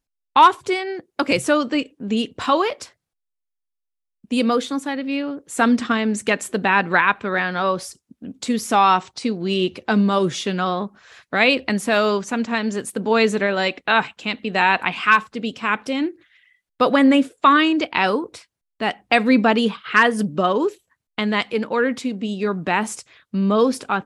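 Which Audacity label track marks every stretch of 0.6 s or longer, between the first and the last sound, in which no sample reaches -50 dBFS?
2.920000	4.240000	silence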